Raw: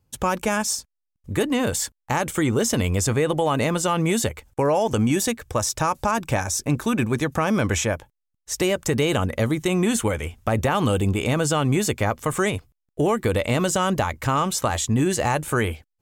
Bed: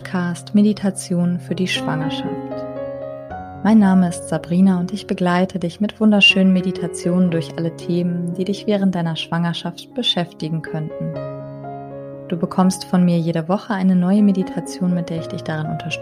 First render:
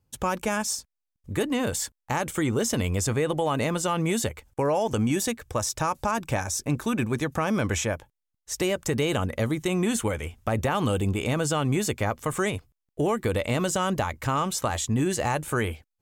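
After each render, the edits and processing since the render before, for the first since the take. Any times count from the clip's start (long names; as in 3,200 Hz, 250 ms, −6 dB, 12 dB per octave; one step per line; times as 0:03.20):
level −4 dB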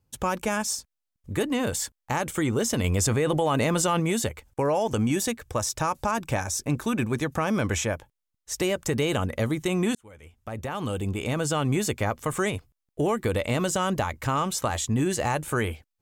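0:02.84–0:04.00: envelope flattener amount 70%
0:09.95–0:11.61: fade in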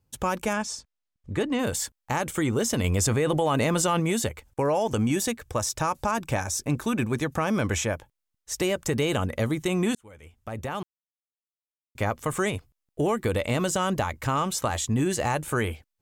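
0:00.53–0:01.59: high-frequency loss of the air 72 metres
0:10.83–0:11.95: silence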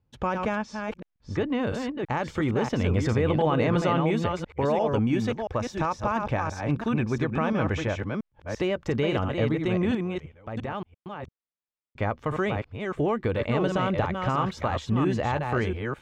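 delay that plays each chunk backwards 342 ms, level −4.5 dB
high-frequency loss of the air 250 metres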